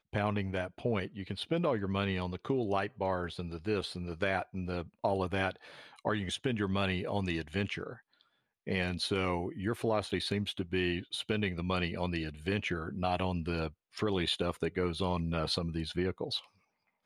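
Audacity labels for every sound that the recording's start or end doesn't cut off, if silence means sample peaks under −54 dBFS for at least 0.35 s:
8.670000	16.470000	sound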